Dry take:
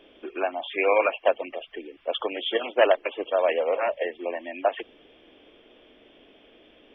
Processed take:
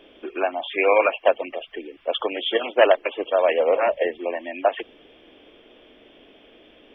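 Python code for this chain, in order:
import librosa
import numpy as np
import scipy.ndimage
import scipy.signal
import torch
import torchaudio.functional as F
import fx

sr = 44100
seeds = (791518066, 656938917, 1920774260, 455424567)

y = fx.low_shelf(x, sr, hz=380.0, db=6.5, at=(3.59, 4.19))
y = y * librosa.db_to_amplitude(3.5)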